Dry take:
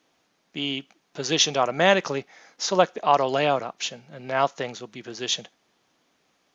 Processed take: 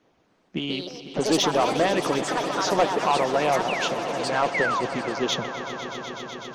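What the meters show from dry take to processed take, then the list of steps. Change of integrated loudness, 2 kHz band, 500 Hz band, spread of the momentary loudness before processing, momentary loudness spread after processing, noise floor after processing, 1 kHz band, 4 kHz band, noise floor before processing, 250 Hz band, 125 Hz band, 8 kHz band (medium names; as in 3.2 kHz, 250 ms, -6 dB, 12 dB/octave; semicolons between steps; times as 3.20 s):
-0.5 dB, +1.5 dB, +1.0 dB, 14 LU, 11 LU, -65 dBFS, +1.0 dB, -2.0 dB, -69 dBFS, +4.0 dB, +1.0 dB, no reading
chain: bass shelf 450 Hz +9 dB; harmonic-percussive split harmonic -13 dB; treble shelf 3.4 kHz -11.5 dB; in parallel at 0 dB: compression, threshold -26 dBFS, peak gain reduction 12 dB; on the sum: saturation -14 dBFS, distortion -12 dB; painted sound fall, 4.54–4.81 s, 930–2300 Hz -25 dBFS; on a send: echo with a slow build-up 125 ms, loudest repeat 5, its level -15 dB; on the sum: ever faster or slower copies 278 ms, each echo +5 st, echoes 2, each echo -6 dB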